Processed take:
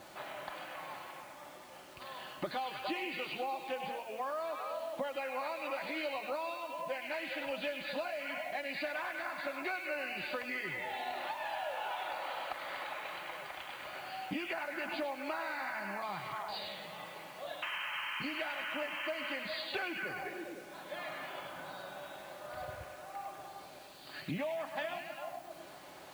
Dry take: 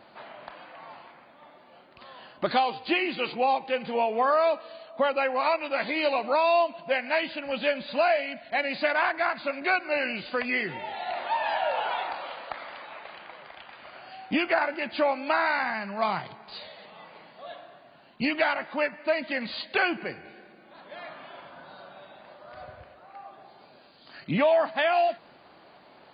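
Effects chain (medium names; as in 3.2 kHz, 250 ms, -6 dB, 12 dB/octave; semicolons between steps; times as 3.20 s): painted sound noise, 17.62–19.36 s, 830–3200 Hz -33 dBFS; in parallel at -9 dB: saturation -26.5 dBFS, distortion -8 dB; on the sum: repeats whose band climbs or falls 101 ms, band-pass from 2.9 kHz, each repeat -0.7 oct, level -2.5 dB; compression 8:1, threshold -33 dBFS, peak gain reduction 15.5 dB; bit crusher 9-bit; comb of notches 230 Hz; on a send at -20 dB: reverberation RT60 5.2 s, pre-delay 69 ms; on the sum: trim -1.5 dB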